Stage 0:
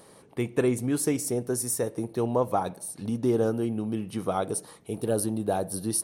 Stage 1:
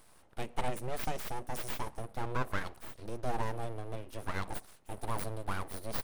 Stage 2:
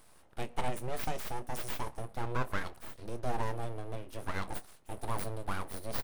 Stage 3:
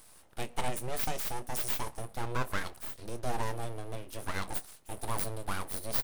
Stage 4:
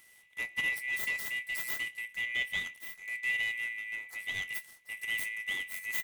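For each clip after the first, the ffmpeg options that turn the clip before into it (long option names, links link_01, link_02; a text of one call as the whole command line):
ffmpeg -i in.wav -af "equalizer=frequency=200:width=6.3:gain=-6,aeval=exprs='abs(val(0))':channel_layout=same,volume=-6dB" out.wav
ffmpeg -i in.wav -filter_complex "[0:a]asplit=2[link_01][link_02];[link_02]adelay=25,volume=-13.5dB[link_03];[link_01][link_03]amix=inputs=2:normalize=0" out.wav
ffmpeg -i in.wav -af "highshelf=frequency=3400:gain=9" out.wav
ffmpeg -i in.wav -af "afftfilt=real='real(if(lt(b,920),b+92*(1-2*mod(floor(b/92),2)),b),0)':imag='imag(if(lt(b,920),b+92*(1-2*mod(floor(b/92),2)),b),0)':win_size=2048:overlap=0.75,volume=-5dB" out.wav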